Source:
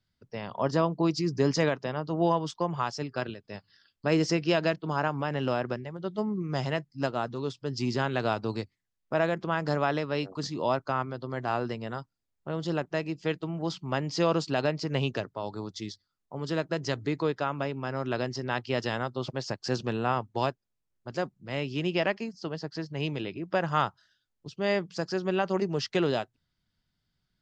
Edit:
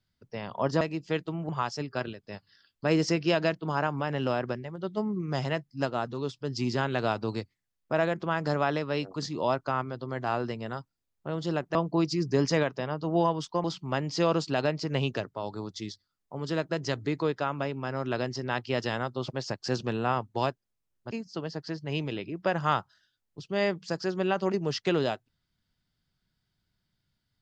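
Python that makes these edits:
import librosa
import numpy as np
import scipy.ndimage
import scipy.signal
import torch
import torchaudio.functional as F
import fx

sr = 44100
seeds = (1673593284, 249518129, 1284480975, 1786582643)

y = fx.edit(x, sr, fx.swap(start_s=0.81, length_s=1.89, other_s=12.96, other_length_s=0.68),
    fx.cut(start_s=21.11, length_s=1.08), tone=tone)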